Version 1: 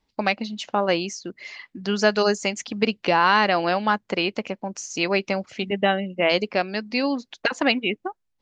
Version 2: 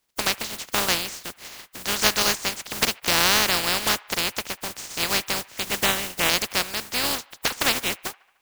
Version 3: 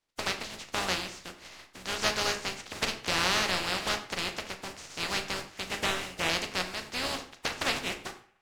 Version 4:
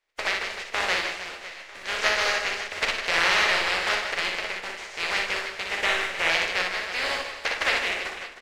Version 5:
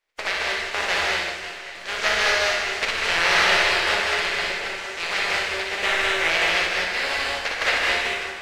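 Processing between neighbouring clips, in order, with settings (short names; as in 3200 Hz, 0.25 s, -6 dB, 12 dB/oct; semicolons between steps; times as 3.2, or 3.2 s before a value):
spectral contrast lowered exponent 0.17; band-limited delay 74 ms, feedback 61%, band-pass 1400 Hz, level -22 dB; gain -1 dB
air absorption 58 m; on a send at -4 dB: reverb RT60 0.45 s, pre-delay 11 ms; on the sum: gain -7 dB
ten-band EQ 125 Hz -12 dB, 250 Hz -8 dB, 500 Hz +5 dB, 2000 Hz +9 dB, 16000 Hz -9 dB; on a send: reverse bouncing-ball echo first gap 60 ms, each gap 1.6×, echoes 5
non-linear reverb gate 0.25 s rising, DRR -1.5 dB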